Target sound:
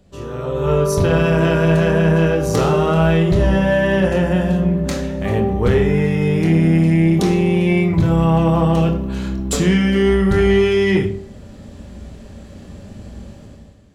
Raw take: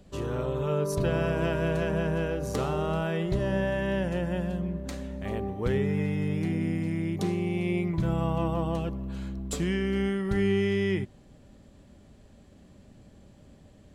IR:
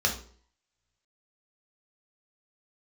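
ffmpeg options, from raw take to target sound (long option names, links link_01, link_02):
-filter_complex "[0:a]asplit=2[link_01][link_02];[1:a]atrim=start_sample=2205,adelay=24[link_03];[link_02][link_03]afir=irnorm=-1:irlink=0,volume=-13dB[link_04];[link_01][link_04]amix=inputs=2:normalize=0,dynaudnorm=framelen=100:gausssize=11:maxgain=14.5dB,asoftclip=type=tanh:threshold=-5dB"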